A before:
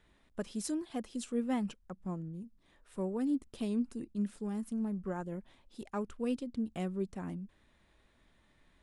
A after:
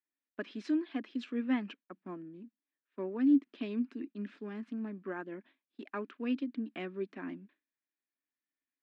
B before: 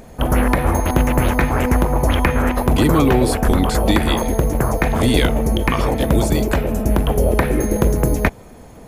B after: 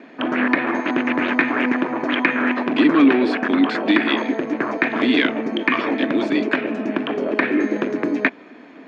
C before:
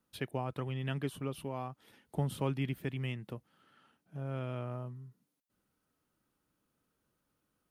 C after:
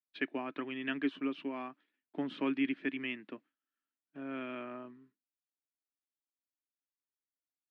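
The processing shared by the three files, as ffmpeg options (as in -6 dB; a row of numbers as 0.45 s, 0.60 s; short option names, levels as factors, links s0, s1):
-af "agate=range=0.0224:threshold=0.00562:ratio=3:detection=peak,acontrast=84,highpass=f=260:w=0.5412,highpass=f=260:w=1.3066,equalizer=f=280:t=q:w=4:g=9,equalizer=f=500:t=q:w=4:g=-8,equalizer=f=810:t=q:w=4:g=-7,equalizer=f=1700:t=q:w=4:g=7,equalizer=f=2400:t=q:w=4:g=6,lowpass=f=3900:w=0.5412,lowpass=f=3900:w=1.3066,volume=0.501"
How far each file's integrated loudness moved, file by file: +1.5 LU, -2.0 LU, +0.5 LU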